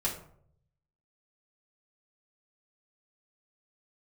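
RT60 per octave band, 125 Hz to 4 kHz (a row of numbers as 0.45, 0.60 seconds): 1.2, 0.70, 0.70, 0.60, 0.45, 0.30 seconds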